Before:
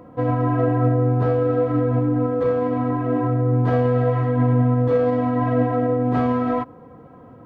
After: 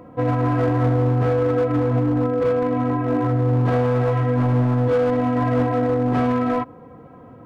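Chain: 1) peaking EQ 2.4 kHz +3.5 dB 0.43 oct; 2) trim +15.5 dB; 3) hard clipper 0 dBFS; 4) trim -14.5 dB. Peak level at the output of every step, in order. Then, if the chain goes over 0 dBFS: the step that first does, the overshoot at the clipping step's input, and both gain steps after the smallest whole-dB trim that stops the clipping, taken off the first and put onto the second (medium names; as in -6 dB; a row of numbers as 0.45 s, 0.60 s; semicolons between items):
-8.5 dBFS, +7.0 dBFS, 0.0 dBFS, -14.5 dBFS; step 2, 7.0 dB; step 2 +8.5 dB, step 4 -7.5 dB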